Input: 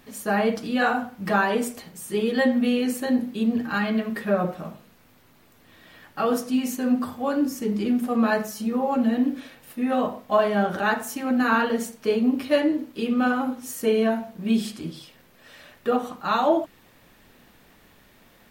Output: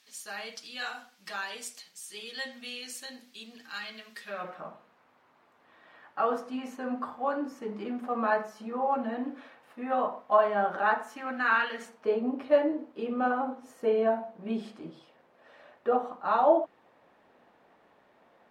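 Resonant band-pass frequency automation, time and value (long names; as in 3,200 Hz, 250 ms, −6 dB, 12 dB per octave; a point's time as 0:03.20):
resonant band-pass, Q 1.2
0:04.23 5,200 Hz
0:04.65 960 Hz
0:11.00 960 Hz
0:11.71 2,300 Hz
0:12.07 720 Hz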